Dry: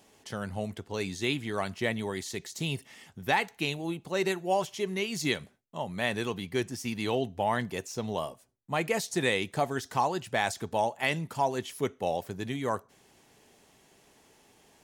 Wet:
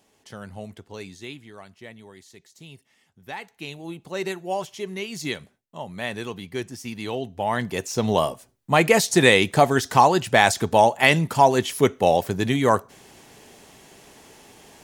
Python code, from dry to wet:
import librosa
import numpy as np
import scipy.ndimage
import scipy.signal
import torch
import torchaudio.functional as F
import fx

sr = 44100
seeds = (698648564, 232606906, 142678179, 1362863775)

y = fx.gain(x, sr, db=fx.line((0.89, -3.0), (1.63, -12.5), (3.08, -12.5), (4.02, 0.0), (7.23, 0.0), (8.1, 12.0)))